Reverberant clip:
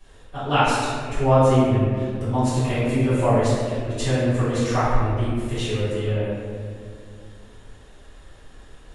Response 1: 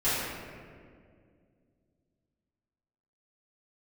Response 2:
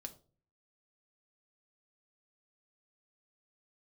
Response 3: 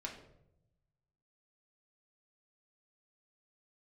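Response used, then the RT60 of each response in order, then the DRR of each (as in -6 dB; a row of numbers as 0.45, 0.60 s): 1; 2.1, 0.40, 0.80 s; -14.5, 5.5, -1.5 dB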